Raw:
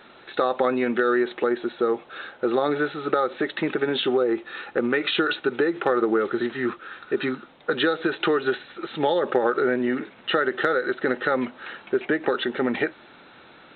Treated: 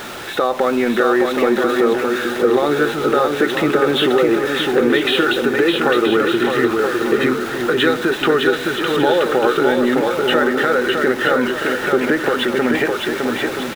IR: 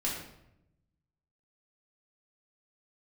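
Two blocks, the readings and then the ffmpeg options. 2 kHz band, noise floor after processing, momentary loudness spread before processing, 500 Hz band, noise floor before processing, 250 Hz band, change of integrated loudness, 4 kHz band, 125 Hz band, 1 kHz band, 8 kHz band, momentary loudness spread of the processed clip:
+8.5 dB, −25 dBFS, 7 LU, +8.0 dB, −50 dBFS, +8.5 dB, +8.0 dB, +9.5 dB, +10.0 dB, +7.5 dB, can't be measured, 4 LU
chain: -filter_complex "[0:a]aeval=exprs='val(0)+0.5*0.0211*sgn(val(0))':channel_layout=same,equalizer=frequency=110:width_type=o:width=0.77:gain=2.5,asplit=2[link_01][link_02];[link_02]alimiter=limit=-16.5dB:level=0:latency=1:release=171,volume=1.5dB[link_03];[link_01][link_03]amix=inputs=2:normalize=0,aecho=1:1:610|976|1196|1327|1406:0.631|0.398|0.251|0.158|0.1"

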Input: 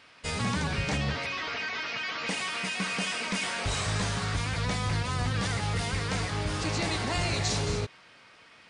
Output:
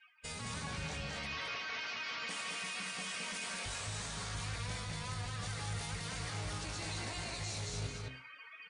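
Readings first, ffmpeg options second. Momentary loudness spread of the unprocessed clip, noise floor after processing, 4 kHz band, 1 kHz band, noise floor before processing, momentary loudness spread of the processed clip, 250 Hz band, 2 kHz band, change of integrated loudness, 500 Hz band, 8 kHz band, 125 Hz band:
3 LU, −54 dBFS, −8.5 dB, −10.5 dB, −55 dBFS, 2 LU, −14.0 dB, −9.5 dB, −10.0 dB, −13.0 dB, −6.0 dB, −11.5 dB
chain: -filter_complex "[0:a]aemphasis=mode=production:type=cd,bandreject=frequency=5000:width=27,bandreject=frequency=64.73:width_type=h:width=4,bandreject=frequency=129.46:width_type=h:width=4,bandreject=frequency=194.19:width_type=h:width=4,bandreject=frequency=258.92:width_type=h:width=4,bandreject=frequency=323.65:width_type=h:width=4,bandreject=frequency=388.38:width_type=h:width=4,afftdn=noise_reduction=35:noise_floor=-48,adynamicequalizer=threshold=0.00398:dfrequency=270:dqfactor=1.3:tfrequency=270:tqfactor=1.3:attack=5:release=100:ratio=0.375:range=1.5:mode=cutabove:tftype=bell,alimiter=level_in=1.5dB:limit=-24dB:level=0:latency=1,volume=-1.5dB,areverse,acompressor=threshold=-50dB:ratio=6,areverse,asplit=2[link_01][link_02];[link_02]adelay=18,volume=-11.5dB[link_03];[link_01][link_03]amix=inputs=2:normalize=0,aecho=1:1:177.8|215.7:0.282|0.708,volume=7.5dB"

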